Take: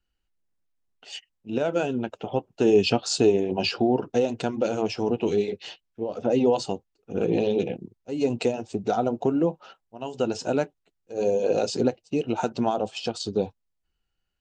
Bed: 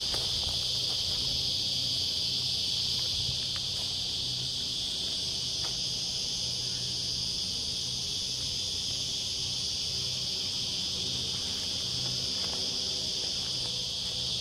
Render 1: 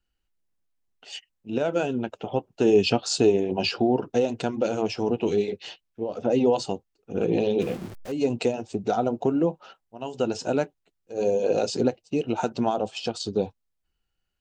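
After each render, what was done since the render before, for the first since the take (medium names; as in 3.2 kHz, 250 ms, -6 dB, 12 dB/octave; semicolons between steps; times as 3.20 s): 7.61–8.12 s: jump at every zero crossing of -35 dBFS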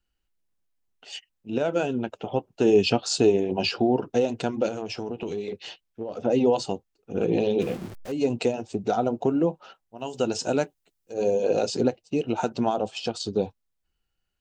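4.68–6.24 s: compression, threshold -27 dBFS; 9.98–11.14 s: treble shelf 5.2 kHz +9.5 dB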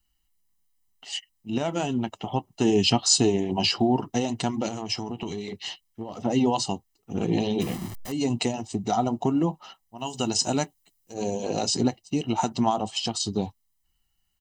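treble shelf 5.4 kHz +11.5 dB; comb 1 ms, depth 68%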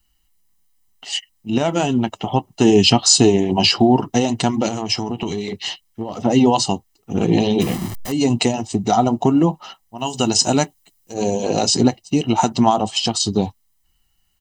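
trim +8.5 dB; peak limiter -1 dBFS, peak gain reduction 2.5 dB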